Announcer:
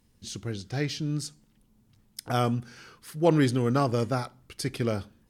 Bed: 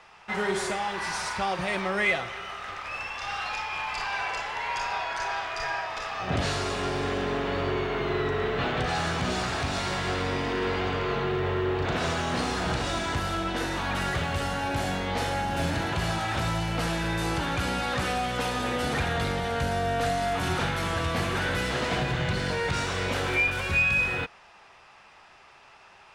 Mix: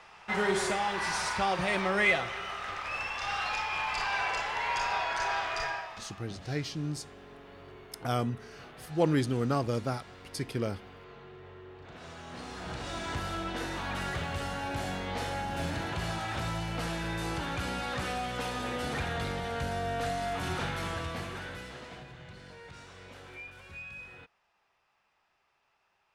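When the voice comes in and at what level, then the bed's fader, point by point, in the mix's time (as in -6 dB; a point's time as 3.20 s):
5.75 s, -4.5 dB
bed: 5.58 s -0.5 dB
6.35 s -22 dB
11.81 s -22 dB
13.13 s -6 dB
20.86 s -6 dB
22.13 s -21 dB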